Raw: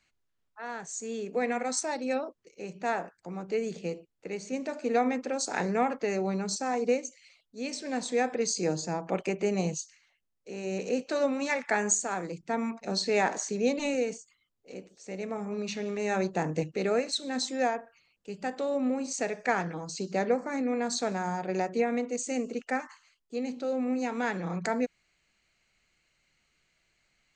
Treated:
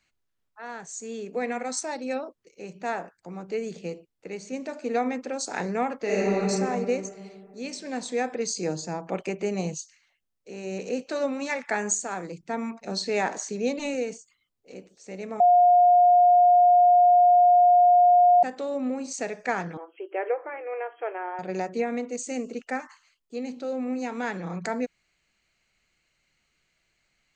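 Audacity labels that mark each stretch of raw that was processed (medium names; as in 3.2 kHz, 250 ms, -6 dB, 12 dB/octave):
5.970000	6.400000	reverb throw, RT60 2.4 s, DRR -6.5 dB
15.400000	18.430000	bleep 712 Hz -13.5 dBFS
19.770000	21.390000	brick-wall FIR band-pass 310–3300 Hz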